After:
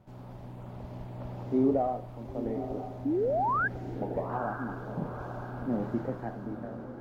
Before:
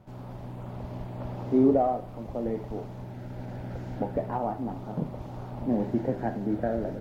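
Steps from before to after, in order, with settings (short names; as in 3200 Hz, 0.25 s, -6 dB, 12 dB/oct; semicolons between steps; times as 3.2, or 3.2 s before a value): ending faded out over 1.05 s; painted sound rise, 3.05–3.68, 260–1700 Hz -23 dBFS; diffused feedback echo 0.918 s, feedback 51%, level -10 dB; gain -4.5 dB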